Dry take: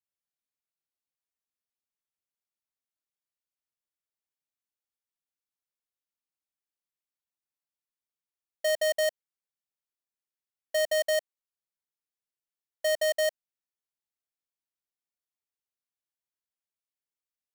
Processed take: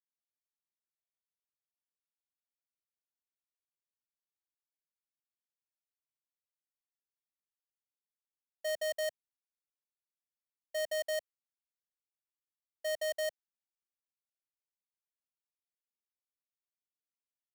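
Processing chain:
multiband upward and downward expander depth 40%
level −8.5 dB

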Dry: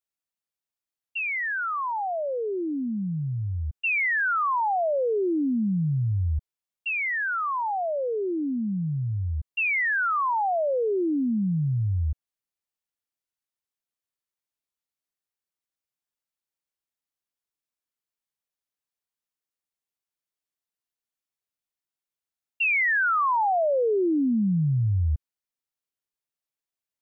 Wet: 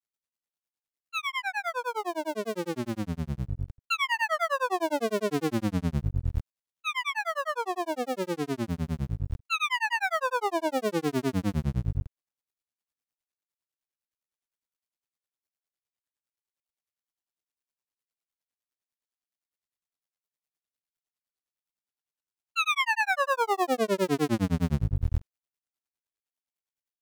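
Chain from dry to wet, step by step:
sub-harmonics by changed cycles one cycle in 2, muted
granular cloud 100 ms, grains 9.8 per second
level +3.5 dB

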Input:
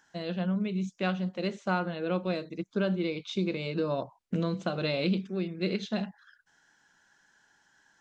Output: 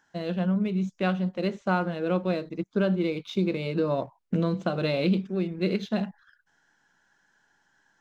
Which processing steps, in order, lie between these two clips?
high-shelf EQ 2,500 Hz −6 dB
in parallel at −4 dB: slack as between gear wheels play −45.5 dBFS

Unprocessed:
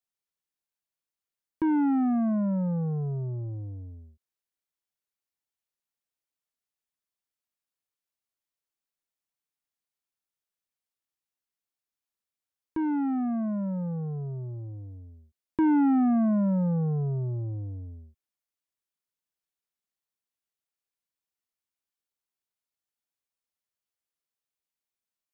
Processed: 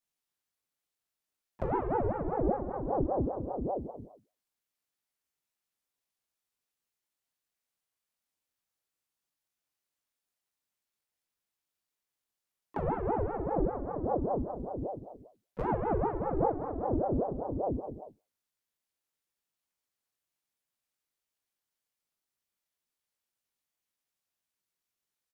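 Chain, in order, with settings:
downward compressor 6 to 1, threshold −34 dBFS, peak gain reduction 12 dB
pitch-shifted copies added −7 semitones −7 dB, −5 semitones 0 dB, +3 semitones −15 dB
on a send: flutter between parallel walls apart 3.4 metres, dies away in 0.3 s
on the sum: ring modulator whose carrier an LFO sweeps 420 Hz, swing 65%, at 5.1 Hz

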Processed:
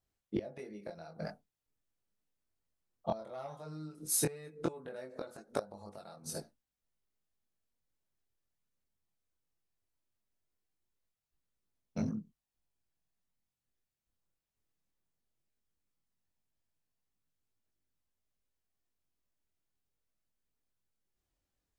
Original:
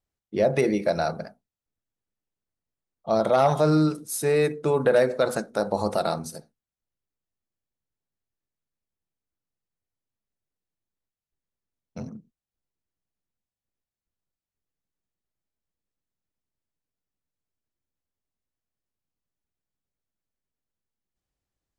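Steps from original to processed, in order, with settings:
gate with flip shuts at −18 dBFS, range −25 dB
multi-voice chorus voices 2, 0.17 Hz, delay 22 ms, depth 3.4 ms
level +3 dB

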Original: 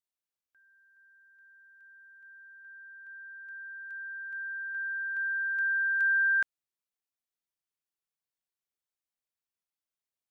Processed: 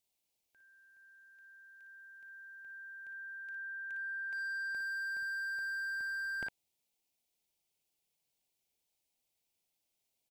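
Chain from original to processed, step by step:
flat-topped bell 1,400 Hz −12.5 dB 1 octave
ambience of single reflections 38 ms −15.5 dB, 57 ms −8.5 dB
slew-rate limiting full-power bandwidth 7.7 Hz
level +9 dB

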